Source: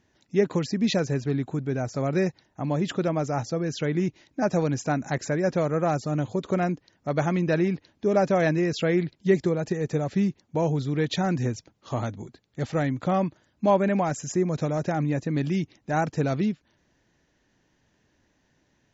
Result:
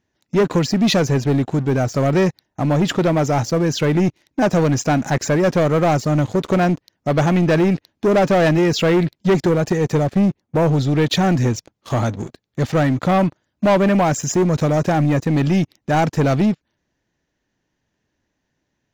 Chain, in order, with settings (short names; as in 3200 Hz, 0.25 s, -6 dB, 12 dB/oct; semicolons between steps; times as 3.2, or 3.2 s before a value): 10.03–10.74 high shelf 2800 Hz -8.5 dB; sample leveller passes 3